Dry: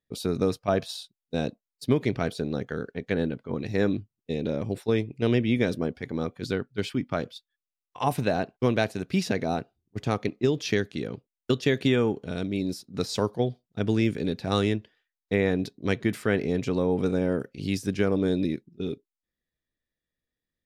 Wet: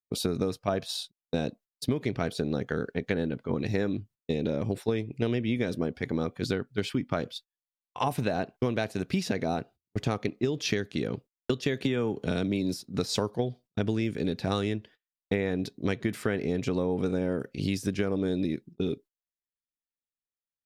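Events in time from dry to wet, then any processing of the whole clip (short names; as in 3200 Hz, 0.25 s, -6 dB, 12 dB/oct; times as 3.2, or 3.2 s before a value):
11.84–12.77 three-band squash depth 70%
whole clip: gate -48 dBFS, range -25 dB; compressor, threshold -29 dBFS; gain +4.5 dB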